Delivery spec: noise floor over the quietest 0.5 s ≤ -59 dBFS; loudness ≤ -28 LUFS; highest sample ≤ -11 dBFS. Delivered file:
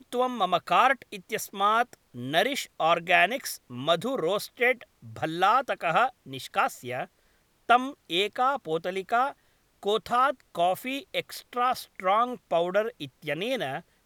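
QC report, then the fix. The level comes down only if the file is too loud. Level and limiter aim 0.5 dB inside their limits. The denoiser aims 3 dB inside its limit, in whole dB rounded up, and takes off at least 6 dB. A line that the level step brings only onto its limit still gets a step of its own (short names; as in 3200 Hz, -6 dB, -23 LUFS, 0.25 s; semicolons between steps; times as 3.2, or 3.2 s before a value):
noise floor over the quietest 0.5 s -66 dBFS: OK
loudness -27.0 LUFS: fail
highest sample -6.5 dBFS: fail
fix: gain -1.5 dB; limiter -11.5 dBFS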